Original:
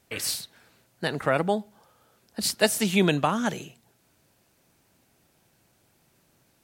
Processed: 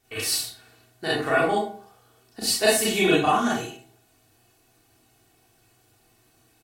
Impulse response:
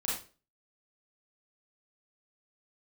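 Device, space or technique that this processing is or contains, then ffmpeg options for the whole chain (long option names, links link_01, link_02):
microphone above a desk: -filter_complex "[0:a]aecho=1:1:2.7:0.69,bandreject=frequency=66.26:width_type=h:width=4,bandreject=frequency=132.52:width_type=h:width=4,bandreject=frequency=198.78:width_type=h:width=4,bandreject=frequency=265.04:width_type=h:width=4,bandreject=frequency=331.3:width_type=h:width=4,bandreject=frequency=397.56:width_type=h:width=4,bandreject=frequency=463.82:width_type=h:width=4,bandreject=frequency=530.08:width_type=h:width=4,bandreject=frequency=596.34:width_type=h:width=4,bandreject=frequency=662.6:width_type=h:width=4,bandreject=frequency=728.86:width_type=h:width=4,bandreject=frequency=795.12:width_type=h:width=4,bandreject=frequency=861.38:width_type=h:width=4,bandreject=frequency=927.64:width_type=h:width=4,bandreject=frequency=993.9:width_type=h:width=4,bandreject=frequency=1060.16:width_type=h:width=4,bandreject=frequency=1126.42:width_type=h:width=4,bandreject=frequency=1192.68:width_type=h:width=4,bandreject=frequency=1258.94:width_type=h:width=4,bandreject=frequency=1325.2:width_type=h:width=4,bandreject=frequency=1391.46:width_type=h:width=4,bandreject=frequency=1457.72:width_type=h:width=4,bandreject=frequency=1523.98:width_type=h:width=4,bandreject=frequency=1590.24:width_type=h:width=4,bandreject=frequency=1656.5:width_type=h:width=4,bandreject=frequency=1722.76:width_type=h:width=4,bandreject=frequency=1789.02:width_type=h:width=4,bandreject=frequency=1855.28:width_type=h:width=4,bandreject=frequency=1921.54:width_type=h:width=4,bandreject=frequency=1987.8:width_type=h:width=4,bandreject=frequency=2054.06:width_type=h:width=4,bandreject=frequency=2120.32:width_type=h:width=4,bandreject=frequency=2186.58:width_type=h:width=4,bandreject=frequency=2252.84:width_type=h:width=4,bandreject=frequency=2319.1:width_type=h:width=4[link_01];[1:a]atrim=start_sample=2205[link_02];[link_01][link_02]afir=irnorm=-1:irlink=0,volume=-2.5dB"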